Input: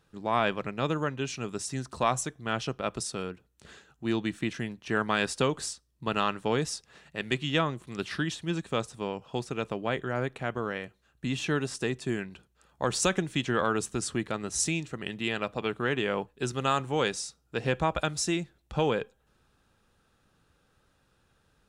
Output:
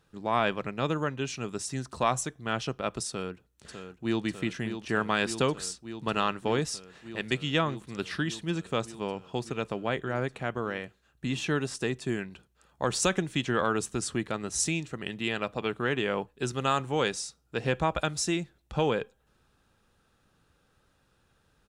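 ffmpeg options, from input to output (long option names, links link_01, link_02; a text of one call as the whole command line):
ffmpeg -i in.wav -filter_complex "[0:a]asplit=2[link_01][link_02];[link_02]afade=type=in:start_time=3.08:duration=0.01,afade=type=out:start_time=4.24:duration=0.01,aecho=0:1:600|1200|1800|2400|3000|3600|4200|4800|5400|6000|6600|7200:0.375837|0.319462|0.271543|0.230811|0.196189|0.166761|0.141747|0.120485|0.102412|0.0870503|0.0739928|0.0628939[link_03];[link_01][link_03]amix=inputs=2:normalize=0" out.wav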